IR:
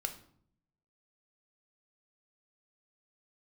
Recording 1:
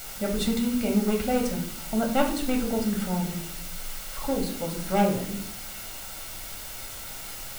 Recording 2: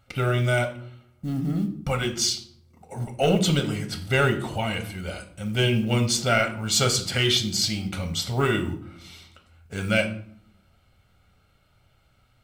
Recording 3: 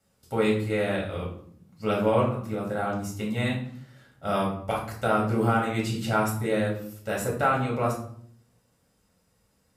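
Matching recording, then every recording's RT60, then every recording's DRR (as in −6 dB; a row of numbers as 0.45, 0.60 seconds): 2; 0.60, 0.60, 0.60 seconds; 1.5, 5.5, −4.0 decibels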